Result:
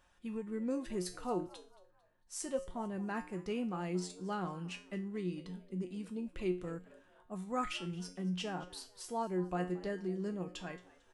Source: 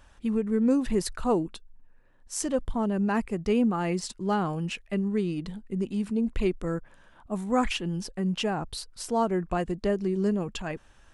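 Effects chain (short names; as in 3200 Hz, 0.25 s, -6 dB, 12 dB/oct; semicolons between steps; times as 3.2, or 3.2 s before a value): low shelf 140 Hz -7.5 dB; resonator 180 Hz, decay 0.35 s, harmonics all, mix 80%; frequency-shifting echo 0.224 s, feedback 37%, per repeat +100 Hz, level -20.5 dB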